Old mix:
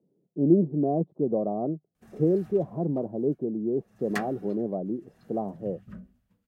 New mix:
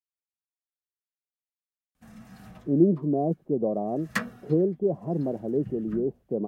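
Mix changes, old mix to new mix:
speech: entry +2.30 s; background +4.0 dB

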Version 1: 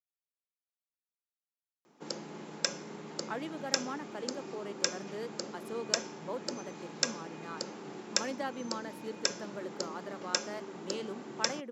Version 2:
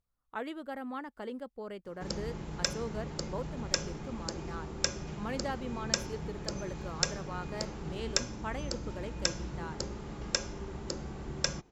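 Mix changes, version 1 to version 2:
speech: entry -2.95 s; master: remove HPF 210 Hz 24 dB/oct

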